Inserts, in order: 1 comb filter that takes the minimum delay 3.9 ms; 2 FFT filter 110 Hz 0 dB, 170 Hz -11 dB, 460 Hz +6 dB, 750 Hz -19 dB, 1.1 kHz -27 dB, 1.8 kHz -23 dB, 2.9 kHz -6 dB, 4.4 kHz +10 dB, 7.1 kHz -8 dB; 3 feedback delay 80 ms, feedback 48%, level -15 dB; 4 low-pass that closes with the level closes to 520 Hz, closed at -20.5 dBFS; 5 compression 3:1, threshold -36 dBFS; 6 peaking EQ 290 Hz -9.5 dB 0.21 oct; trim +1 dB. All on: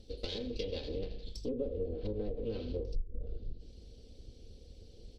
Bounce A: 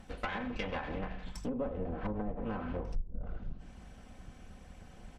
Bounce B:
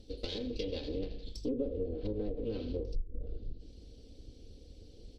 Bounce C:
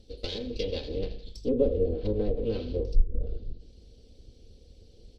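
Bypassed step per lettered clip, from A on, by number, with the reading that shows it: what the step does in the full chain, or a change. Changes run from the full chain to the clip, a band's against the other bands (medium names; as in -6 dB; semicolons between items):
2, 1 kHz band +17.0 dB; 6, 250 Hz band +3.5 dB; 5, mean gain reduction 5.5 dB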